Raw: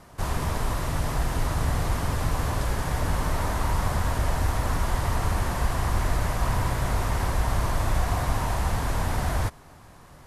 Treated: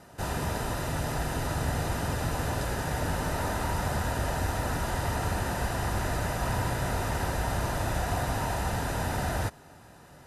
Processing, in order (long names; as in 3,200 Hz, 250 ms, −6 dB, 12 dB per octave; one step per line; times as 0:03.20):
notch comb filter 1,100 Hz